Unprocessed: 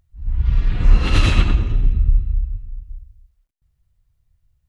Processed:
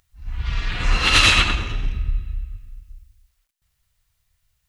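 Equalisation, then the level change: tilt shelf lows -10 dB, about 660 Hz; +2.0 dB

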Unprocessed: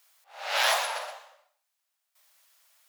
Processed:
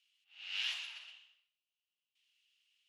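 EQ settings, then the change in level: dynamic bell 3 kHz, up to -6 dB, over -44 dBFS, Q 1.7; ladder band-pass 3 kHz, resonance 80%; -1.5 dB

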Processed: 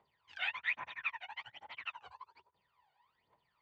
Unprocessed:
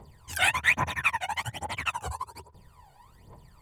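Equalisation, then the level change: band-pass filter 3.6 kHz, Q 1.3; distance through air 230 m; treble shelf 3.5 kHz -12 dB; -1.5 dB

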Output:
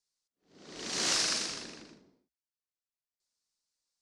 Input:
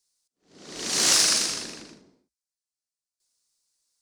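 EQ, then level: distance through air 68 m; -6.0 dB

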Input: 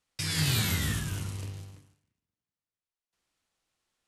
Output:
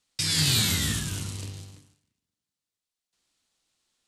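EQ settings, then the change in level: graphic EQ 250/4000/8000 Hz +4/+7/+7 dB; 0.0 dB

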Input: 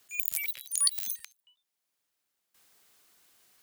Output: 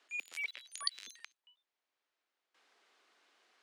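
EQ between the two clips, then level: high-pass 270 Hz 24 dB/octave; tape spacing loss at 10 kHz 36 dB; tilt EQ +2.5 dB/octave; +5.0 dB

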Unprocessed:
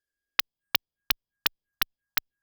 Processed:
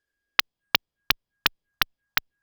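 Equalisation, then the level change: treble shelf 5.8 kHz -11 dB; +8.0 dB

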